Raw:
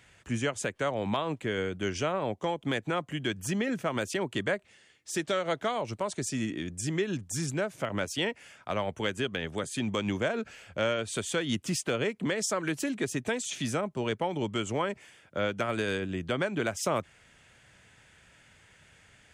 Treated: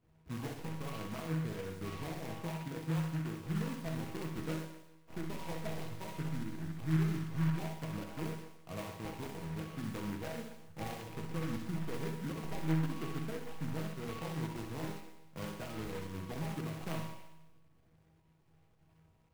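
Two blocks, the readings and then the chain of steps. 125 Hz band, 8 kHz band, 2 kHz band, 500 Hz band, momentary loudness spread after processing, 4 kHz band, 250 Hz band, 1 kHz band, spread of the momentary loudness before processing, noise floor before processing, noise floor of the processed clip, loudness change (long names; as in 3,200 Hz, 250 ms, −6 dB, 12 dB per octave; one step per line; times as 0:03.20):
−0.5 dB, −16.5 dB, −14.0 dB, −13.5 dB, 10 LU, −14.5 dB, −6.0 dB, −11.0 dB, 4 LU, −60 dBFS, −67 dBFS, −8.5 dB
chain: stylus tracing distortion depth 0.021 ms
reverb reduction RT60 0.63 s
bass and treble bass +9 dB, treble −3 dB
hum removal 61.44 Hz, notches 40
sample-and-hold swept by an LFO 26×, swing 60% 0.57 Hz
parametric band 3,000 Hz −8 dB 2 octaves
notch filter 580 Hz, Q 12
tuned comb filter 160 Hz, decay 0.99 s, harmonics all, mix 90%
fake sidechain pumping 112 BPM, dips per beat 1, −8 dB, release 120 ms
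tuned comb filter 81 Hz, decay 1.5 s, harmonics all, mix 50%
flutter between parallel walls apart 10.9 metres, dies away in 0.68 s
short delay modulated by noise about 1,400 Hz, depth 0.1 ms
level +9.5 dB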